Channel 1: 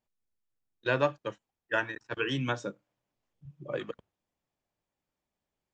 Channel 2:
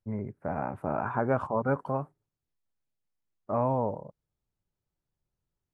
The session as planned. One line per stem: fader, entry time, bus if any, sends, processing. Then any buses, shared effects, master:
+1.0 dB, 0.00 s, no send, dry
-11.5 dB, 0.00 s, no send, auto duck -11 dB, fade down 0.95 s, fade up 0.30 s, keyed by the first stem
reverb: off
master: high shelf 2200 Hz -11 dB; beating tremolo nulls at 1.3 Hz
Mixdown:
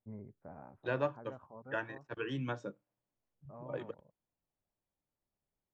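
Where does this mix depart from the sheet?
stem 1 +1.0 dB -> -5.5 dB; master: missing beating tremolo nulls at 1.3 Hz

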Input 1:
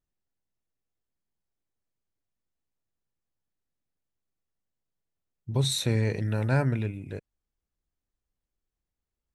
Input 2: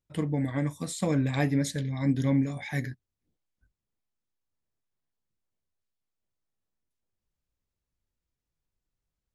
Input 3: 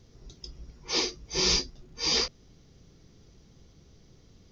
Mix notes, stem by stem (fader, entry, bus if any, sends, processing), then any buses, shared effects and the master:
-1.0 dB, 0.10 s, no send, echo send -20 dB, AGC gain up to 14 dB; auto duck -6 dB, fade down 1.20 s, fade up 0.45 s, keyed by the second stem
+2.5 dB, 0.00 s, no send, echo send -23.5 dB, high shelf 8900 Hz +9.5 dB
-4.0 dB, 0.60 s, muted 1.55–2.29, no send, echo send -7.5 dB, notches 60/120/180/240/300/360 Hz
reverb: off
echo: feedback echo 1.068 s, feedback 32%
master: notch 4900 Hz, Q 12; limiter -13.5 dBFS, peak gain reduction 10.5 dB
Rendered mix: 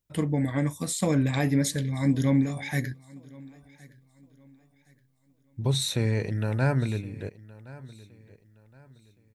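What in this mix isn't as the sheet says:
stem 1 -1.0 dB -> -11.0 dB; stem 3: muted; master: missing notch 4900 Hz, Q 12

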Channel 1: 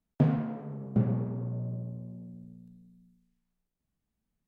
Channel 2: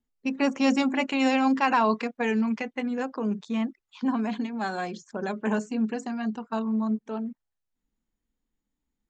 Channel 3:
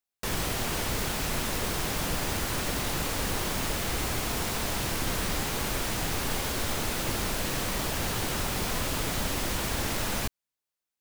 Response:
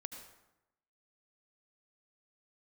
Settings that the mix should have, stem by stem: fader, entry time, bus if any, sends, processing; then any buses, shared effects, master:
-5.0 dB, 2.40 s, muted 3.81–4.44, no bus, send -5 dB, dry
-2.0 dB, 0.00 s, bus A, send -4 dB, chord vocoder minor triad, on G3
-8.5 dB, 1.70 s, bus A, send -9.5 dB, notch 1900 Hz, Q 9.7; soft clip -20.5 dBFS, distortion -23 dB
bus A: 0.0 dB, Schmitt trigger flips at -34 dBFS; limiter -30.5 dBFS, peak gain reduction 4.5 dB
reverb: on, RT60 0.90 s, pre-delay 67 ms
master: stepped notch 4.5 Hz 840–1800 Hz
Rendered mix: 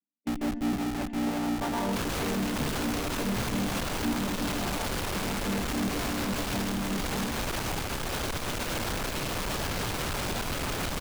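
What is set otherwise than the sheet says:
stem 1 -5.0 dB -> -14.0 dB; stem 3 -8.5 dB -> 0.0 dB; master: missing stepped notch 4.5 Hz 840–1800 Hz

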